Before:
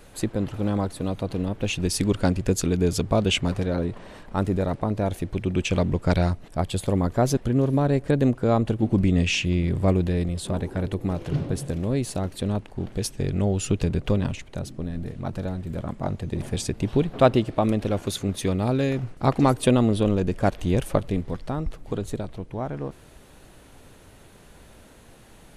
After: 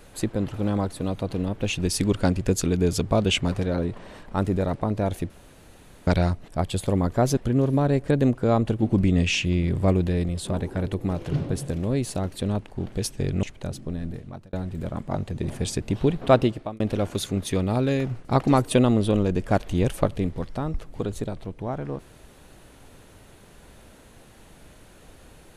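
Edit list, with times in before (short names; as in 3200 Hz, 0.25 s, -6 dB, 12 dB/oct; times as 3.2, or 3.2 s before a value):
5.3–6.07 room tone
13.43–14.35 cut
14.96–15.45 fade out
17.34–17.72 fade out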